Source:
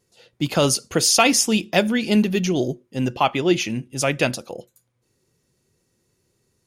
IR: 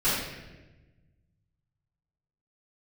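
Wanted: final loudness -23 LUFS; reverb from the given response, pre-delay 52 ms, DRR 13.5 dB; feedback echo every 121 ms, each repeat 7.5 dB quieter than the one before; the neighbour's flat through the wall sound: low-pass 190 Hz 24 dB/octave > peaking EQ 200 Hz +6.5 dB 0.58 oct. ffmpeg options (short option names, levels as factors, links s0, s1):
-filter_complex "[0:a]aecho=1:1:121|242|363|484|605:0.422|0.177|0.0744|0.0312|0.0131,asplit=2[s0][s1];[1:a]atrim=start_sample=2205,adelay=52[s2];[s1][s2]afir=irnorm=-1:irlink=0,volume=0.0447[s3];[s0][s3]amix=inputs=2:normalize=0,lowpass=f=190:w=0.5412,lowpass=f=190:w=1.3066,equalizer=f=200:t=o:w=0.58:g=6.5,volume=1.12"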